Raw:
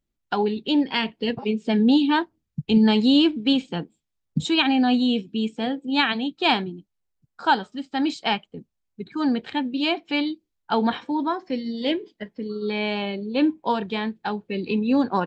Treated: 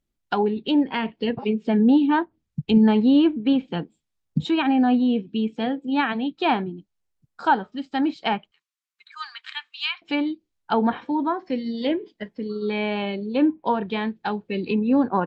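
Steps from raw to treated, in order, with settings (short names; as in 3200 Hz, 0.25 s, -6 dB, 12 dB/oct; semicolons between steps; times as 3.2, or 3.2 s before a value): 8.51–10.02 elliptic high-pass 1100 Hz, stop band 50 dB; treble ducked by the level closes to 1700 Hz, closed at -19.5 dBFS; gain +1 dB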